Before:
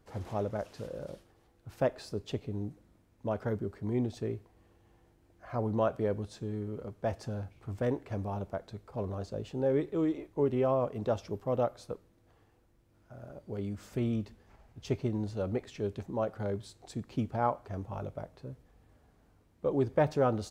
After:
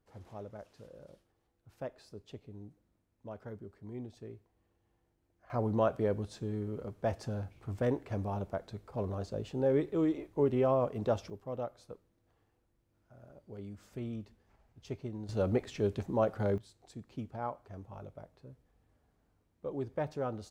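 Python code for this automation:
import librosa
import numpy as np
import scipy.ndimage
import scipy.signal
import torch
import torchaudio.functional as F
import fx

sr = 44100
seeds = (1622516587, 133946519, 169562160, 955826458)

y = fx.gain(x, sr, db=fx.steps((0.0, -12.0), (5.5, 0.0), (11.3, -8.5), (15.29, 3.0), (16.58, -8.5)))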